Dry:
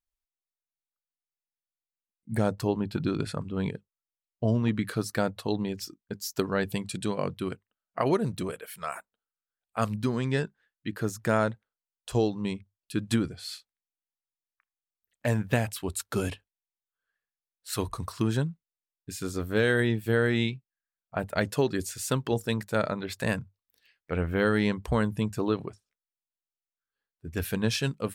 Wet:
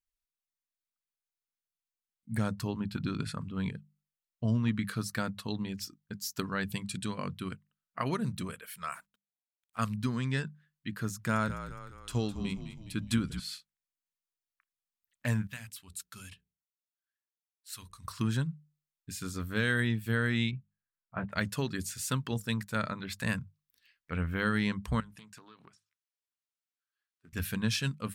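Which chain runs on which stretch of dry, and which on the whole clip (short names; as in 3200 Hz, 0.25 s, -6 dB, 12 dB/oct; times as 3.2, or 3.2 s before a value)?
8.94–9.79 G.711 law mismatch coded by mu + compressor 1.5:1, threshold -56 dBFS
11.15–13.4 notch 1800 Hz, Q 13 + frequency-shifting echo 0.207 s, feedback 53%, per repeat -46 Hz, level -11 dB
15.47–18.05 passive tone stack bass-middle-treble 5-5-5 + notches 60/120/180/240/300/360/420/480 Hz
20.51–21.32 LPF 1800 Hz + doubler 16 ms -4 dB
25–27.33 weighting filter A + compressor 8:1, threshold -44 dBFS + Doppler distortion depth 0.19 ms
whole clip: band shelf 510 Hz -9.5 dB; notches 50/100/150/200 Hz; gain -2 dB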